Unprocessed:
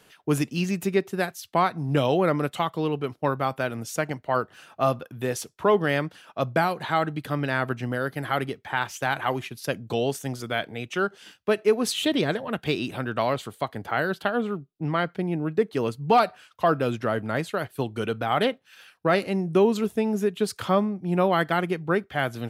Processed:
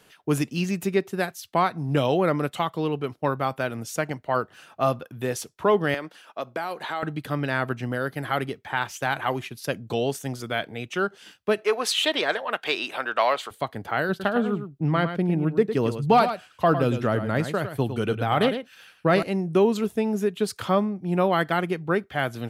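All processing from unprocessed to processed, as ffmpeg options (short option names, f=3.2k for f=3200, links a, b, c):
-filter_complex "[0:a]asettb=1/sr,asplit=3[a][b][c];[a]atrim=end=5.944[d];[b]atrim=start=5.94:end=7.03,asetpts=PTS-STARTPTS,afade=t=in:d=0.004:c=qsin,afade=t=out:st=1.086:d=0.004:c=qsin,acompressor=threshold=-24dB:ratio=4:attack=3.2:release=140:knee=1:detection=peak,highpass=310[e];[c]atrim=start=7.026[f];[d][e]acrossfade=d=0.004:c1=hsin:c2=qsin[g];[g][f]acrossfade=d=0.004:c1=qsin:c2=hsin,asettb=1/sr,asplit=3[h][i][j];[h]atrim=end=11.644[k];[i]atrim=start=11.64:end=13.51,asetpts=PTS-STARTPTS,afade=t=in:d=0.004:c=qsin,afade=t=out:st=1.866:d=0.004:c=qsin,highshelf=f=6.1k:g=-9.5,acontrast=84,highpass=710[l];[j]atrim=start=13.506[m];[k][l]acrossfade=d=0.004:c1=hsin:c2=qsin[n];[n][m]acrossfade=d=0.004:c1=qsin:c2=hsin,asettb=1/sr,asplit=3[o][p][q];[o]atrim=end=14.094[r];[p]atrim=start=14.09:end=19.23,asetpts=PTS-STARTPTS,afade=t=in:d=0.004:c=qsin,afade=t=out:st=5.136:d=0.004:c=qsin,lowshelf=f=230:g=7,aecho=1:1:106:0.335,atrim=end_sample=226674[s];[q]atrim=start=19.226[t];[r][s]acrossfade=d=0.004:c1=hsin:c2=qsin[u];[u][t]acrossfade=d=0.004:c1=qsin:c2=hsin"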